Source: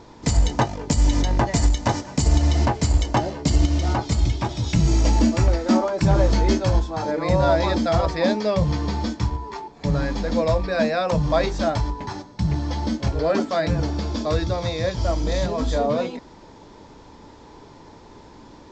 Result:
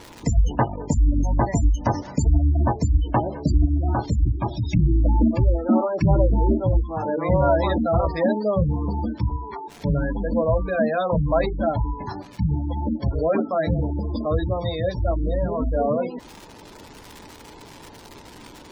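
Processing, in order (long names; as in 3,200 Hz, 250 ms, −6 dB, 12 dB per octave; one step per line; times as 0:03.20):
surface crackle 540 per second −30 dBFS
gate on every frequency bin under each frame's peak −20 dB strong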